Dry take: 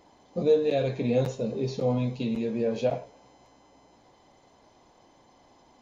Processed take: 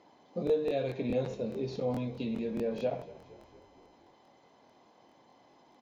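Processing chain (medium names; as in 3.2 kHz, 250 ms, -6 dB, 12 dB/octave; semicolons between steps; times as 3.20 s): in parallel at -1 dB: compression, threshold -32 dBFS, peak gain reduction 14.5 dB; on the sum: band-pass 140–4800 Hz; frequency-shifting echo 233 ms, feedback 60%, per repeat -34 Hz, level -19.5 dB; crackling interface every 0.21 s, samples 1024, repeat, from 0.45 s; trim -8 dB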